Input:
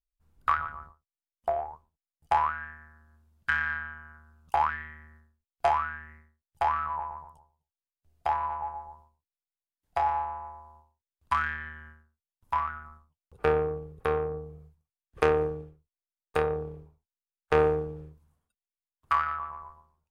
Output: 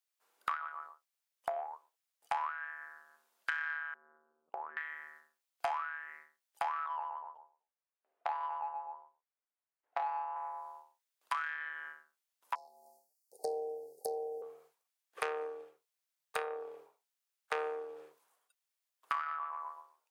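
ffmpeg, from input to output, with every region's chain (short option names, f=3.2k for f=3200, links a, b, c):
-filter_complex "[0:a]asettb=1/sr,asplit=3[a][b][c];[a]atrim=end=3.944[d];[b]atrim=start=3.94:end=4.77,asetpts=PTS-STARTPTS,afade=t=in:d=0.004:c=qsin,afade=t=out:st=0.826:d=0.004:c=qsin,lowpass=f=380:t=q:w=1.7,acompressor=threshold=-40dB:ratio=3:attack=3.2:release=140:knee=1:detection=peak[e];[c]atrim=start=4.766[f];[d][e]acrossfade=d=0.004:c1=hsin:c2=qsin[g];[g][f]acrossfade=d=0.004:c1=qsin:c2=hsin,asettb=1/sr,asplit=3[h][i][j];[h]atrim=end=6.864[k];[i]atrim=start=6.86:end=10.36,asetpts=PTS-STARTPTS,afade=t=in:d=0.004:c=qsin,afade=t=out:st=3.496:d=0.004:c=qsin,lowpass=2.8k,adynamicsmooth=sensitivity=1:basefreq=2k[l];[j]atrim=start=10.356[m];[k][l]acrossfade=d=0.004:c1=hsin:c2=qsin[n];[n][m]acrossfade=d=0.004:c1=qsin:c2=hsin,asettb=1/sr,asplit=3[o][p][q];[o]atrim=end=12.554[r];[p]atrim=start=12.55:end=14.42,asetpts=PTS-STARTPTS,afade=t=in:d=0.004:c=qsin,afade=t=out:st=1.866:d=0.004:c=qsin,asuperstop=centerf=1900:order=20:qfactor=0.53,aemphasis=mode=production:type=cd[s];[q]atrim=start=14.416[t];[r][s]acrossfade=d=0.004:c1=hsin:c2=qsin[u];[u][t]acrossfade=d=0.004:c1=qsin:c2=hsin,highpass=f=450:w=0.5412,highpass=f=450:w=1.3066,tiltshelf=f=730:g=-3.5,acompressor=threshold=-43dB:ratio=3,volume=4.5dB"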